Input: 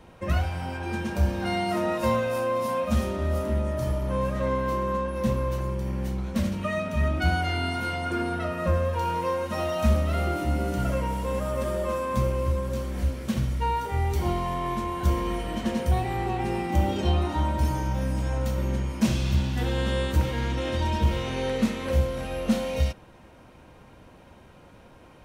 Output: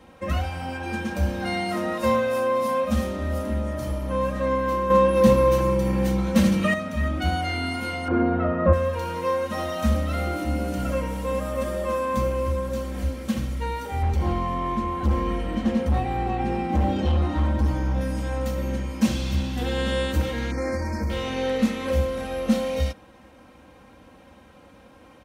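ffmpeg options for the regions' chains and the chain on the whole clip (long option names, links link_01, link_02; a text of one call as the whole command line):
ffmpeg -i in.wav -filter_complex "[0:a]asettb=1/sr,asplit=3[link_01][link_02][link_03];[link_01]atrim=end=4.904[link_04];[link_02]atrim=start=4.9:end=6.74,asetpts=PTS-STARTPTS,afade=type=in:duration=0.004:curve=qsin,afade=type=out:start_time=1.836:duration=0.004:curve=qsin,aecho=1:1:6:0.49,atrim=end_sample=81144,acontrast=79[link_05];[link_03]atrim=start=6.736[link_06];[link_04][link_05]acrossfade=duration=0.004:curve1=hsin:curve2=qsin[link_07];[link_07][link_06]acrossfade=duration=0.004:curve1=qsin:curve2=hsin,asettb=1/sr,asplit=3[link_08][link_09][link_10];[link_08]atrim=end=8.084[link_11];[link_09]atrim=start=8.08:end=8.73,asetpts=PTS-STARTPTS,afade=type=in:duration=0.004:curve=qsin,afade=type=out:start_time=0.646:duration=0.004:curve=qsin,lowpass=1200,acontrast=89[link_12];[link_10]atrim=start=8.726[link_13];[link_11][link_12]acrossfade=duration=0.004:curve1=hsin:curve2=qsin[link_14];[link_14][link_13]acrossfade=duration=0.004:curve1=qsin:curve2=hsin,asettb=1/sr,asplit=3[link_15][link_16][link_17];[link_15]atrim=end=14.024[link_18];[link_16]atrim=start=14.02:end=18.01,asetpts=PTS-STARTPTS,afade=type=in:duration=0.004:curve=qsin,afade=type=out:start_time=3.986:duration=0.004:curve=qsin,lowpass=frequency=3400:poles=1,lowshelf=frequency=220:gain=6.5,volume=16.5dB,asoftclip=hard,volume=-16.5dB[link_19];[link_17]atrim=start=18.006[link_20];[link_18][link_19]acrossfade=duration=0.004:curve1=hsin:curve2=qsin[link_21];[link_21][link_20]acrossfade=duration=0.004:curve1=qsin:curve2=hsin,asettb=1/sr,asplit=3[link_22][link_23][link_24];[link_22]atrim=end=20.514[link_25];[link_23]atrim=start=20.51:end=21.1,asetpts=PTS-STARTPTS,afade=type=in:duration=0.004:curve=qsin,afade=type=out:start_time=0.586:duration=0.004:curve=qsin,acompressor=threshold=-22dB:ratio=3:attack=3.2:release=140:knee=1:detection=peak,asuperstop=centerf=3200:order=20:qfactor=1.7[link_26];[link_24]atrim=start=21.096[link_27];[link_25][link_26]acrossfade=duration=0.004:curve1=hsin:curve2=qsin[link_28];[link_28][link_27]acrossfade=duration=0.004:curve1=qsin:curve2=hsin,highpass=56,aecho=1:1:3.8:0.52" out.wav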